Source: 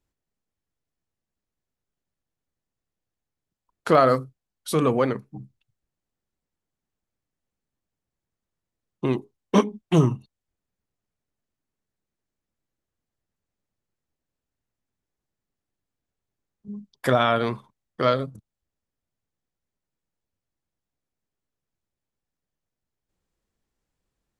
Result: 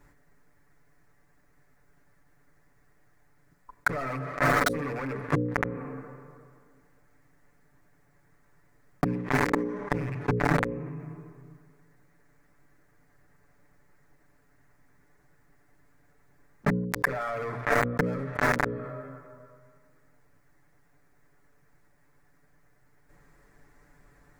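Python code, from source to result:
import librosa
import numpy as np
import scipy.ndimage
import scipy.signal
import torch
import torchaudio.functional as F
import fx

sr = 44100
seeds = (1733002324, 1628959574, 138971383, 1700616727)

y = fx.rattle_buzz(x, sr, strikes_db=-24.0, level_db=-18.0)
y = fx.rev_plate(y, sr, seeds[0], rt60_s=2.0, hf_ratio=0.65, predelay_ms=0, drr_db=17.5)
y = fx.leveller(y, sr, passes=5)
y = fx.gate_flip(y, sr, shuts_db=-12.0, range_db=-42)
y = fx.leveller(y, sr, passes=5)
y = np.clip(y, -10.0 ** (-18.0 / 20.0), 10.0 ** (-18.0 / 20.0))
y = fx.high_shelf_res(y, sr, hz=2400.0, db=-7.5, q=3.0)
y = fx.hum_notches(y, sr, base_hz=60, count=9)
y = y + 0.77 * np.pad(y, (int(6.9 * sr / 1000.0), 0))[:len(y)]
y = fx.env_flatten(y, sr, amount_pct=70)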